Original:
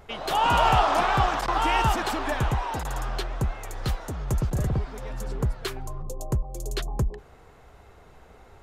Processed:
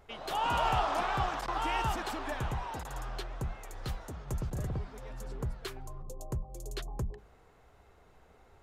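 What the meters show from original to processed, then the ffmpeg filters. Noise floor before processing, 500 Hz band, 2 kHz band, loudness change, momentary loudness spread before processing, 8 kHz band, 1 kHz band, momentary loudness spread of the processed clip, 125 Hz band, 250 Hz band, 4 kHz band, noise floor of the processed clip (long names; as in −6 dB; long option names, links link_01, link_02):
−52 dBFS, −9.0 dB, −9.0 dB, −9.0 dB, 14 LU, −9.0 dB, −9.0 dB, 14 LU, −9.5 dB, −9.5 dB, −9.0 dB, −61 dBFS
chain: -af "bandreject=frequency=50:width_type=h:width=6,bandreject=frequency=100:width_type=h:width=6,bandreject=frequency=150:width_type=h:width=6,bandreject=frequency=200:width_type=h:width=6,volume=-9dB"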